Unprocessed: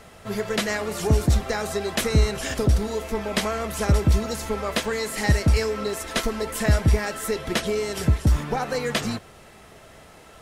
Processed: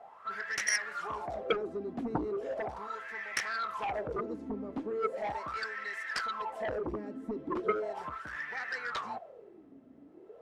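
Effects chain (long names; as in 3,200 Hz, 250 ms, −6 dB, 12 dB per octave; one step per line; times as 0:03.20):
asymmetric clip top −17 dBFS, bottom −11.5 dBFS
LFO wah 0.38 Hz 260–1,900 Hz, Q 11
harmonic generator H 7 −6 dB, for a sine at −21.5 dBFS
level +1.5 dB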